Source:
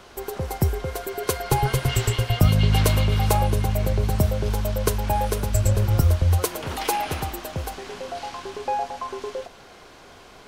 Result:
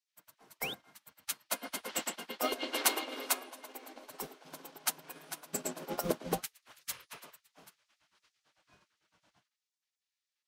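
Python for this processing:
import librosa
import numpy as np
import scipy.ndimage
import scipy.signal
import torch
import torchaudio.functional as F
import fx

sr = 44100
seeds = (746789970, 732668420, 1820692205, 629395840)

y = fx.spec_paint(x, sr, seeds[0], shape='rise', start_s=0.52, length_s=0.22, low_hz=1200.0, high_hz=3900.0, level_db=-31.0)
y = fx.low_shelf(y, sr, hz=480.0, db=11.5)
y = fx.spec_gate(y, sr, threshold_db=-25, keep='weak')
y = scipy.signal.sosfilt(scipy.signal.butter(2, 46.0, 'highpass', fs=sr, output='sos'), y)
y = fx.upward_expand(y, sr, threshold_db=-46.0, expansion=2.5)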